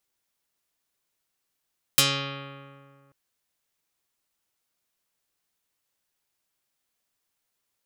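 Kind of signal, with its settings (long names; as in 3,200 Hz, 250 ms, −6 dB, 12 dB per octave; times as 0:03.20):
Karplus-Strong string C#3, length 1.14 s, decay 2.08 s, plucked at 0.42, dark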